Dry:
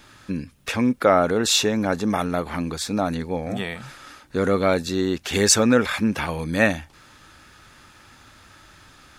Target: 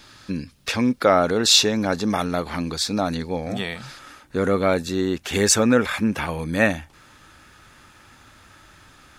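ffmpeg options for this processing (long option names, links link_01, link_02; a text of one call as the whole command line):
ffmpeg -i in.wav -af "asetnsamples=nb_out_samples=441:pad=0,asendcmd='3.99 equalizer g -2.5',equalizer=frequency=4600:width=1.6:gain=7.5" out.wav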